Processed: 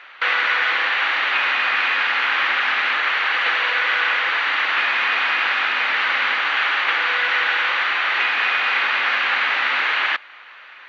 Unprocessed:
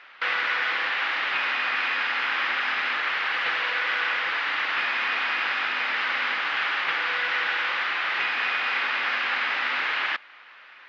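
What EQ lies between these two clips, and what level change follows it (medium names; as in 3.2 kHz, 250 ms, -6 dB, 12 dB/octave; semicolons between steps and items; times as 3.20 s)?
peaking EQ 140 Hz -9 dB 1.6 oct; band-stop 5.1 kHz, Q 6.6; +6.5 dB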